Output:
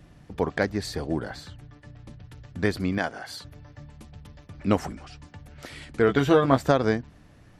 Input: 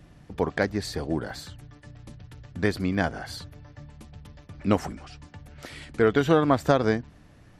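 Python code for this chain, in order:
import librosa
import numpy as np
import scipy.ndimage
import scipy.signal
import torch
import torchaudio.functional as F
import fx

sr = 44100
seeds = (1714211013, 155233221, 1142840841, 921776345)

y = fx.high_shelf(x, sr, hz=7300.0, db=-11.0, at=(1.29, 2.27))
y = fx.highpass(y, sr, hz=450.0, slope=6, at=(2.98, 3.45))
y = fx.doubler(y, sr, ms=15.0, db=-5, at=(6.07, 6.62))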